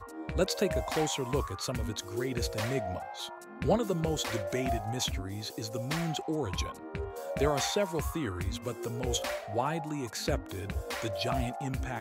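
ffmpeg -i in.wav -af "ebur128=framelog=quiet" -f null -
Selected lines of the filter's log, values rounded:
Integrated loudness:
  I:         -33.0 LUFS
  Threshold: -43.0 LUFS
Loudness range:
  LRA:         1.5 LU
  Threshold: -53.0 LUFS
  LRA low:   -33.9 LUFS
  LRA high:  -32.4 LUFS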